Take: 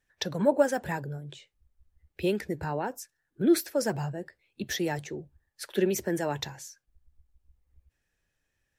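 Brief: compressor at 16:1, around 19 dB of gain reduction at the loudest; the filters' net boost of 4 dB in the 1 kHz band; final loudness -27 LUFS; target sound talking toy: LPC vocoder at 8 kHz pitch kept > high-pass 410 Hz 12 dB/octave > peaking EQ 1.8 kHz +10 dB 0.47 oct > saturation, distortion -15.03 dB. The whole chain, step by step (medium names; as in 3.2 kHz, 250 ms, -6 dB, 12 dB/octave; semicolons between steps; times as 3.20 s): peaking EQ 1 kHz +4.5 dB; compression 16:1, threshold -35 dBFS; LPC vocoder at 8 kHz pitch kept; high-pass 410 Hz 12 dB/octave; peaking EQ 1.8 kHz +10 dB 0.47 oct; saturation -30.5 dBFS; trim +17 dB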